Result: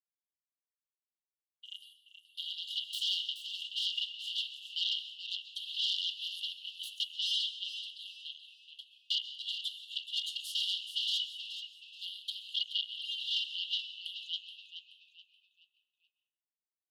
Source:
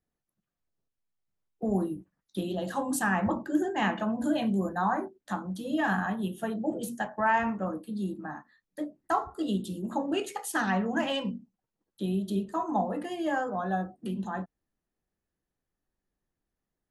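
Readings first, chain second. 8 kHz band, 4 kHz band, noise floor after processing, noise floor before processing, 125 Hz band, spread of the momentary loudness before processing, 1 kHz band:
−7.5 dB, +13.5 dB, below −85 dBFS, below −85 dBFS, below −40 dB, 9 LU, below −40 dB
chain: noise gate −41 dBFS, range −32 dB
brickwall limiter −20 dBFS, peak gain reduction 4.5 dB
sine wavefolder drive 13 dB, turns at −20 dBFS
frequency shifter −49 Hz
linear-phase brick-wall high-pass 2,800 Hz
high-frequency loss of the air 420 metres
echo with shifted repeats 427 ms, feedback 34%, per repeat −77 Hz, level −10 dB
dense smooth reverb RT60 1.3 s, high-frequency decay 0.4×, pre-delay 115 ms, DRR 9 dB
level +7.5 dB

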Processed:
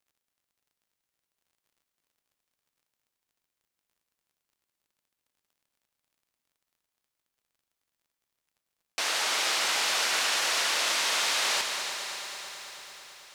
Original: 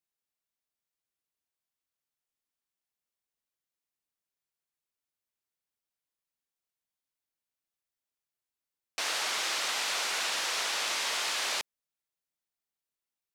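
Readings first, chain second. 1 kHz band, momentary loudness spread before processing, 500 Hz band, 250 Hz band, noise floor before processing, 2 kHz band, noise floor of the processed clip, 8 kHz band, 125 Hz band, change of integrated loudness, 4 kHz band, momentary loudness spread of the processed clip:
+4.5 dB, 5 LU, +4.5 dB, +4.5 dB, below −85 dBFS, +4.5 dB, below −85 dBFS, +4.5 dB, can't be measured, +4.0 dB, +4.5 dB, 15 LU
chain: surface crackle 42 per second −62 dBFS
echo machine with several playback heads 110 ms, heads second and third, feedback 71%, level −11.5 dB
feedback echo at a low word length 145 ms, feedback 80%, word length 9 bits, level −11 dB
level +3 dB

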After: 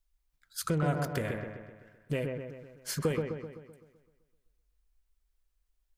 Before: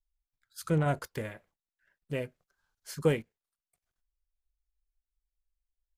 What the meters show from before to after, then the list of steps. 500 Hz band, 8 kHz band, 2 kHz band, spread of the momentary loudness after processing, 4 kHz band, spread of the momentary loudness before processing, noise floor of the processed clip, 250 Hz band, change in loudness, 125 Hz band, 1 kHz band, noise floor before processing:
−1.0 dB, +6.0 dB, +0.5 dB, 16 LU, +3.5 dB, 16 LU, −78 dBFS, 0.0 dB, −2.0 dB, 0.0 dB, 0.0 dB, below −85 dBFS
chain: notch filter 840 Hz, Q 28
downward compressor 3 to 1, threshold −38 dBFS, peak gain reduction 13.5 dB
on a send: delay with a low-pass on its return 128 ms, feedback 53%, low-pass 1,900 Hz, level −3.5 dB
on the sum: level +7.5 dB

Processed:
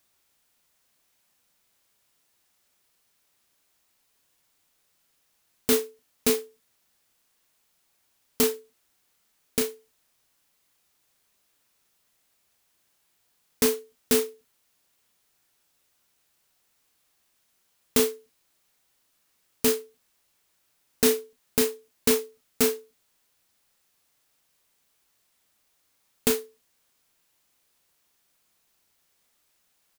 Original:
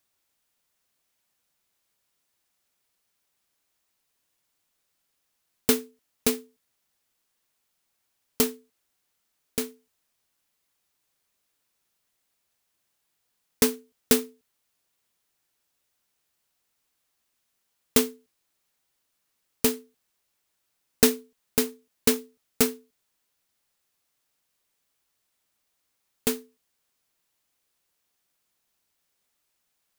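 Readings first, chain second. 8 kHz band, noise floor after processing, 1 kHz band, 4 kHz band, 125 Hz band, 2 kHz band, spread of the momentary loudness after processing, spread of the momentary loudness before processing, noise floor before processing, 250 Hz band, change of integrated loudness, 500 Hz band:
0.0 dB, −71 dBFS, 0.0 dB, 0.0 dB, −2.0 dB, 0.0 dB, 8 LU, 13 LU, −77 dBFS, −1.5 dB, 0.0 dB, +3.0 dB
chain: brickwall limiter −14 dBFS, peak gain reduction 11 dB
double-tracking delay 34 ms −8.5 dB
level +5.5 dB

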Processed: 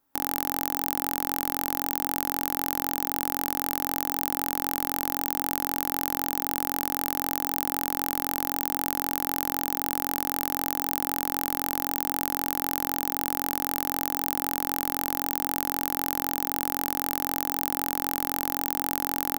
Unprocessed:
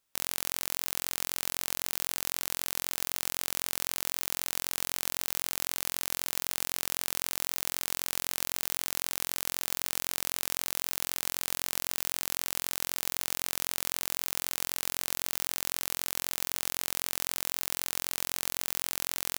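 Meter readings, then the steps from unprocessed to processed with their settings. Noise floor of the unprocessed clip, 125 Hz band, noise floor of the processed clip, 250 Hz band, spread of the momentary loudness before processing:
−78 dBFS, +8.0 dB, −40 dBFS, +15.5 dB, 0 LU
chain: flat-topped bell 4,700 Hz −10.5 dB 2.5 octaves
hollow resonant body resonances 280/830 Hz, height 13 dB, ringing for 45 ms
level +7 dB

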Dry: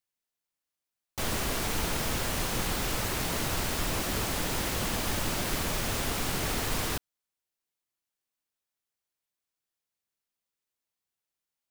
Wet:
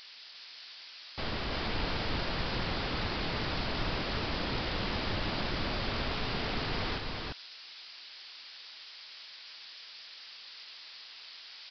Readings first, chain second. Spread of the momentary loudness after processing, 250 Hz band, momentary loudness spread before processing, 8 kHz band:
13 LU, −2.0 dB, 1 LU, −25.5 dB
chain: spike at every zero crossing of −25 dBFS
on a send: single-tap delay 347 ms −3 dB
on the sum: downsampling to 11,025 Hz
level −4 dB

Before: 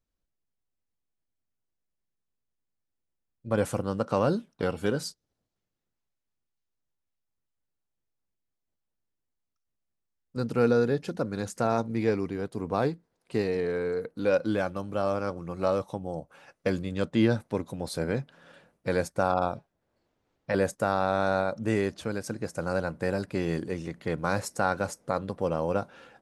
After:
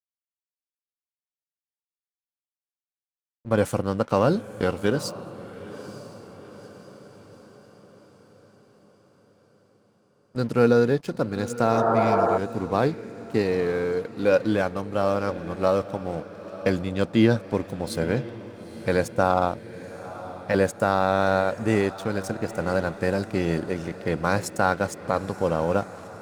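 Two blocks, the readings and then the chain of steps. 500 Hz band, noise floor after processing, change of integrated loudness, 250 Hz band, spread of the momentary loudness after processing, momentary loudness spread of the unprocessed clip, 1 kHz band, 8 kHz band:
+5.0 dB, below −85 dBFS, +5.0 dB, +4.5 dB, 17 LU, 9 LU, +5.5 dB, +3.0 dB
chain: dead-zone distortion −48 dBFS
feedback delay with all-pass diffusion 918 ms, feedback 54%, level −15 dB
healed spectral selection 0:11.77–0:12.35, 270–1,900 Hz before
level +5 dB

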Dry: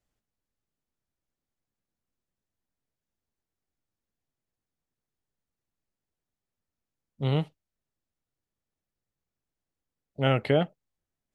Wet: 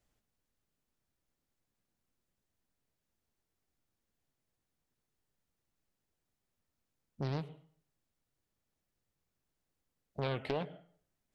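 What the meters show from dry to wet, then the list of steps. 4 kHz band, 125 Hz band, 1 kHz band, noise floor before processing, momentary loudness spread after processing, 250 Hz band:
−11.5 dB, −11.5 dB, −9.5 dB, below −85 dBFS, 13 LU, −12.0 dB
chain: downward compressor 3 to 1, threshold −40 dBFS, peak gain reduction 16 dB
dense smooth reverb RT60 0.52 s, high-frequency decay 0.85×, pre-delay 90 ms, DRR 16 dB
highs frequency-modulated by the lows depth 0.62 ms
level +3 dB

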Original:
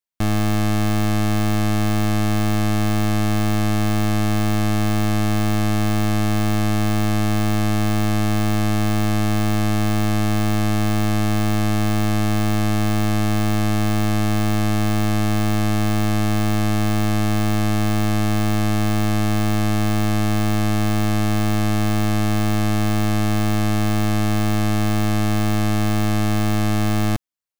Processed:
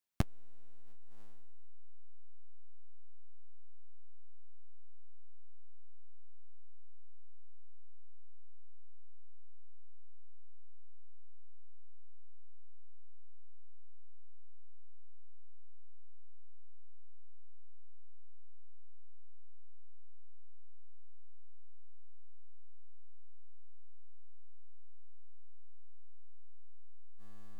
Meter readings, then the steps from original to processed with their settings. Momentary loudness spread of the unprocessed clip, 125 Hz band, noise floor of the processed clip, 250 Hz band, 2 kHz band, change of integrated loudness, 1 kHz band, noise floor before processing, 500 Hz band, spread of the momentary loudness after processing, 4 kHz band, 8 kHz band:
0 LU, −35.5 dB, −36 dBFS, −39.0 dB, −39.5 dB, −19.0 dB, −40.0 dB, −18 dBFS, −39.0 dB, 0 LU, −39.5 dB, −39.5 dB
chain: on a send: feedback delay with all-pass diffusion 826 ms, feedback 47%, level −10 dB
on the sum: saturating transformer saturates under 130 Hz

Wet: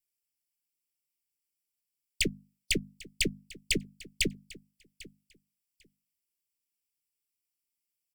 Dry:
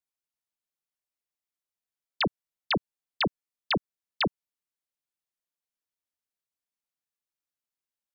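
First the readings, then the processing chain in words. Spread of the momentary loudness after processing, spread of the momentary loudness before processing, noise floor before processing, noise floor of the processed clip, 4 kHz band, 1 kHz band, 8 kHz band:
20 LU, 0 LU, below −85 dBFS, below −85 dBFS, 0.0 dB, below −40 dB, can't be measured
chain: lower of the sound and its delayed copy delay 0.39 ms
Chebyshev band-stop filter 410–2,100 Hz, order 3
high-shelf EQ 5,000 Hz +10 dB
mains-hum notches 50/100/150/200/250 Hz
on a send: repeating echo 797 ms, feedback 17%, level −20 dB
on the sum: AAC 128 kbit/s 48,000 Hz

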